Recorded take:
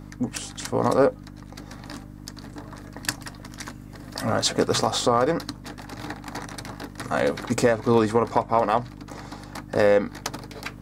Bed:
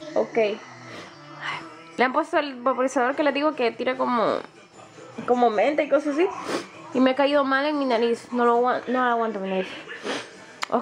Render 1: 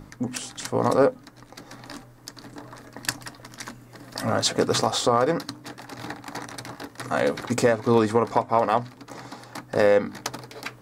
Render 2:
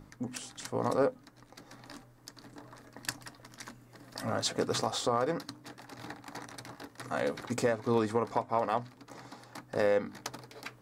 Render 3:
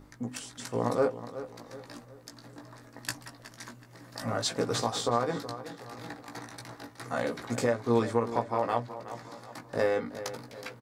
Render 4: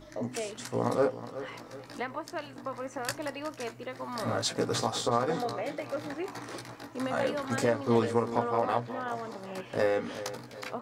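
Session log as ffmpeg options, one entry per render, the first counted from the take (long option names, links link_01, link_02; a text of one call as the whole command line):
ffmpeg -i in.wav -af "bandreject=frequency=50:width_type=h:width=4,bandreject=frequency=100:width_type=h:width=4,bandreject=frequency=150:width_type=h:width=4,bandreject=frequency=200:width_type=h:width=4,bandreject=frequency=250:width_type=h:width=4,bandreject=frequency=300:width_type=h:width=4" out.wav
ffmpeg -i in.wav -af "volume=-9dB" out.wav
ffmpeg -i in.wav -filter_complex "[0:a]asplit=2[link_01][link_02];[link_02]adelay=17,volume=-5dB[link_03];[link_01][link_03]amix=inputs=2:normalize=0,asplit=2[link_04][link_05];[link_05]adelay=372,lowpass=frequency=3800:poles=1,volume=-13dB,asplit=2[link_06][link_07];[link_07]adelay=372,lowpass=frequency=3800:poles=1,volume=0.44,asplit=2[link_08][link_09];[link_09]adelay=372,lowpass=frequency=3800:poles=1,volume=0.44,asplit=2[link_10][link_11];[link_11]adelay=372,lowpass=frequency=3800:poles=1,volume=0.44[link_12];[link_04][link_06][link_08][link_10][link_12]amix=inputs=5:normalize=0" out.wav
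ffmpeg -i in.wav -i bed.wav -filter_complex "[1:a]volume=-15dB[link_01];[0:a][link_01]amix=inputs=2:normalize=0" out.wav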